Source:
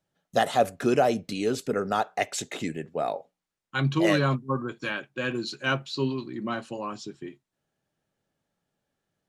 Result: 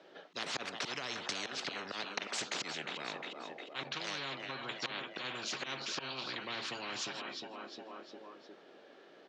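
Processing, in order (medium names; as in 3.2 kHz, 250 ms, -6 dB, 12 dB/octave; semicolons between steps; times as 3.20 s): low-pass 4.4 kHz 24 dB/octave; band-stop 850 Hz, Q 20; slow attack 468 ms; compression, threshold -35 dBFS, peak gain reduction 13 dB; ladder high-pass 300 Hz, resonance 40%; feedback delay 356 ms, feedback 47%, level -18 dB; spectrum-flattening compressor 10:1; trim +11 dB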